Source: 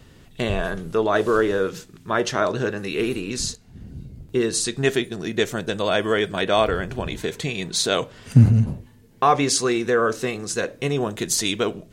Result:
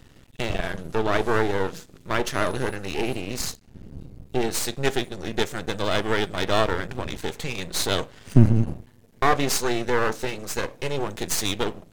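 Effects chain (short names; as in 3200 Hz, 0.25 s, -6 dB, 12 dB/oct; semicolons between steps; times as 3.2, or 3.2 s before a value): 2.32–2.75 whine 10000 Hz -45 dBFS; half-wave rectifier; gain +1 dB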